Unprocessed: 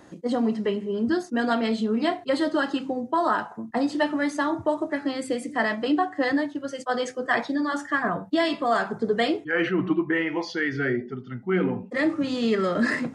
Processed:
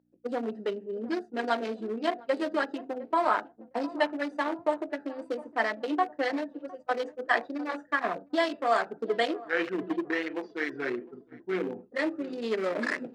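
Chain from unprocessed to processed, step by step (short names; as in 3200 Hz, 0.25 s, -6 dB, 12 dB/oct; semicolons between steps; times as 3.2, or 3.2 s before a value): Wiener smoothing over 41 samples; darkening echo 0.708 s, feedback 51%, low-pass 970 Hz, level -16 dB; expander -30 dBFS; hum 60 Hz, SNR 27 dB; HPF 440 Hz 12 dB/oct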